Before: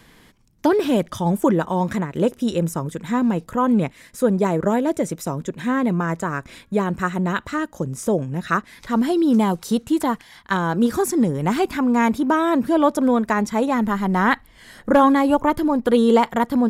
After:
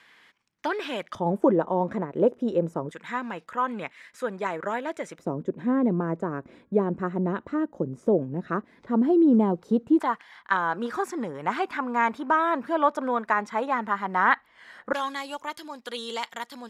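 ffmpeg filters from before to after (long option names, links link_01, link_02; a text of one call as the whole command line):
ffmpeg -i in.wav -af "asetnsamples=nb_out_samples=441:pad=0,asendcmd='1.15 bandpass f 510;2.91 bandpass f 1800;5.19 bandpass f 370;9.99 bandpass f 1300;14.93 bandpass f 4600',bandpass=frequency=2000:width_type=q:width=1:csg=0" out.wav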